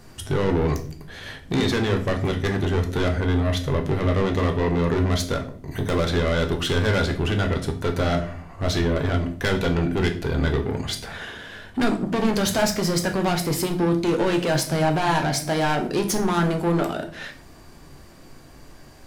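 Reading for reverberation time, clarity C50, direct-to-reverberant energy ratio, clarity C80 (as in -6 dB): 0.50 s, 11.0 dB, 4.0 dB, 15.5 dB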